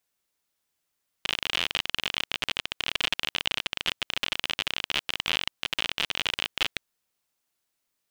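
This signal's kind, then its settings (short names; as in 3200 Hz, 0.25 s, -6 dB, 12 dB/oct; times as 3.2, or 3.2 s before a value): random clicks 44/s -9.5 dBFS 5.52 s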